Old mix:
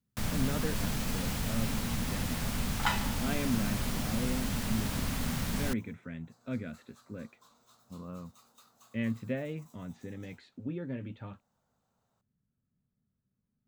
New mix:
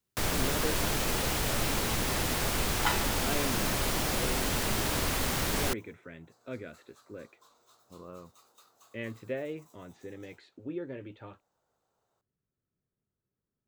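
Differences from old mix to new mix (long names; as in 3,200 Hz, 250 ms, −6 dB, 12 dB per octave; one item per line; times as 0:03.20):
first sound +7.0 dB
master: add low shelf with overshoot 280 Hz −6 dB, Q 3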